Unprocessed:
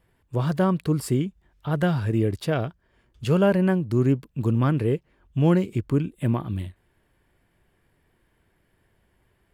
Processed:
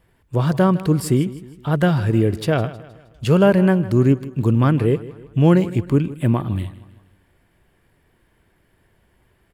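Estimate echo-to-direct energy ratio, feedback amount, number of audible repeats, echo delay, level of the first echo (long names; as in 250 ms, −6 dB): −16.0 dB, 45%, 3, 157 ms, −17.0 dB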